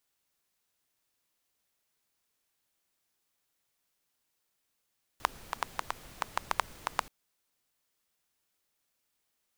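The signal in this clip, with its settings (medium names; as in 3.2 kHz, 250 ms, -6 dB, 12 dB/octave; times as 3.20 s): rain from filtered ticks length 1.88 s, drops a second 6.1, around 1 kHz, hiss -13 dB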